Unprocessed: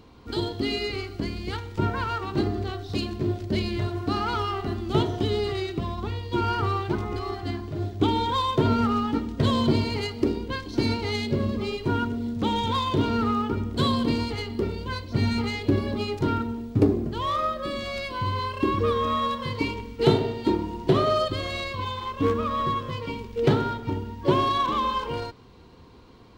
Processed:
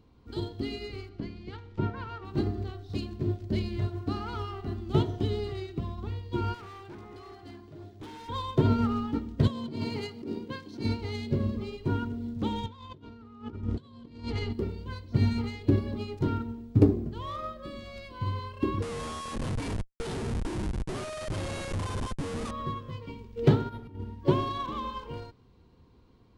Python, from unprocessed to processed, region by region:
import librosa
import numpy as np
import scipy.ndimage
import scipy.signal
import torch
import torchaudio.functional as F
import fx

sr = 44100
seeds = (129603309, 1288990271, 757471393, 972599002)

y = fx.chain(x, sr, fx.lowpass(hz=4500.0, slope=12),
    fx.peak_eq(hz=68.0, db=-9.5, octaves=0.73), at=(1.09, 2.25))
y = fx.chain(y, sr, fx.highpass(hz=310.0, slope=6),
    fx.overload_stage(gain_db=30.5), at=(6.54, 8.29))
y = fx.chain(y, sr, fx.highpass(hz=120.0, slope=24),
    fx.over_compress(threshold_db=-27.0, ratio=-1.0), at=(9.47, 10.85))
y = fx.chain(y, sr, fx.lowpass(hz=7100.0, slope=12),
    fx.over_compress(threshold_db=-31.0, ratio=-0.5), at=(12.66, 14.53))
y = fx.chain(y, sr, fx.tilt_eq(slope=1.5),
    fx.schmitt(flips_db=-29.5),
    fx.resample_bad(factor=2, down='none', up='filtered'), at=(18.82, 22.51))
y = fx.chain(y, sr, fx.over_compress(threshold_db=-31.0, ratio=-0.5),
    fx.resample_linear(factor=3), at=(23.69, 24.2))
y = fx.low_shelf(y, sr, hz=300.0, db=8.5)
y = fx.upward_expand(y, sr, threshold_db=-29.0, expansion=1.5)
y = F.gain(torch.from_numpy(y), -4.5).numpy()